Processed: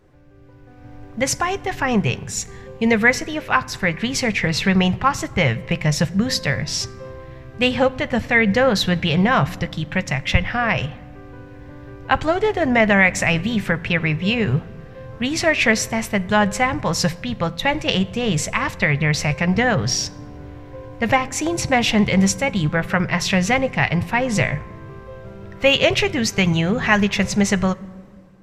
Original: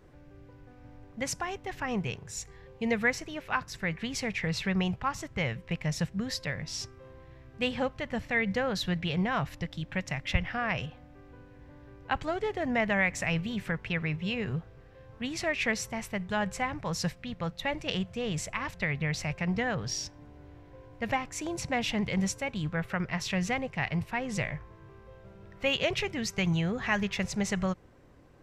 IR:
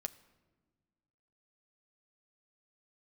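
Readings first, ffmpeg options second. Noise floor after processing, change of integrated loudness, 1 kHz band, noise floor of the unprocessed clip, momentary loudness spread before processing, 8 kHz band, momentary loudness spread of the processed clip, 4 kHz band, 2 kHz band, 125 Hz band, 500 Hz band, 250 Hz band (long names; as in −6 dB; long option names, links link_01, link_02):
−40 dBFS, +12.5 dB, +12.5 dB, −53 dBFS, 8 LU, +12.5 dB, 14 LU, +12.5 dB, +12.5 dB, +12.0 dB, +13.0 dB, +12.5 dB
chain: -filter_complex "[0:a]dynaudnorm=framelen=340:gausssize=5:maxgain=11.5dB,asplit=2[link_01][link_02];[1:a]atrim=start_sample=2205,asetrate=37044,aresample=44100[link_03];[link_02][link_03]afir=irnorm=-1:irlink=0,volume=3.5dB[link_04];[link_01][link_04]amix=inputs=2:normalize=0,volume=-5.5dB"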